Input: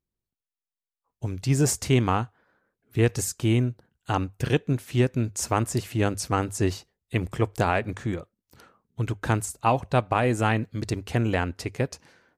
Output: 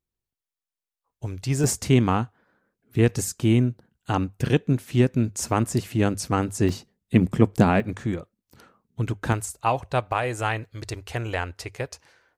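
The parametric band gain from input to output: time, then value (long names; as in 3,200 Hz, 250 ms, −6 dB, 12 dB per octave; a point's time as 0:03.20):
parametric band 210 Hz 1.2 octaves
−4 dB
from 0:01.64 +5.5 dB
from 0:06.69 +15 dB
from 0:07.80 +3.5 dB
from 0:09.33 −8 dB
from 0:10.12 −14.5 dB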